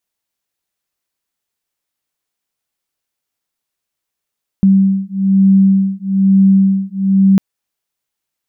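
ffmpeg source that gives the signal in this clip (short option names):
-f lavfi -i "aevalsrc='0.282*(sin(2*PI*193*t)+sin(2*PI*194.1*t))':d=2.75:s=44100"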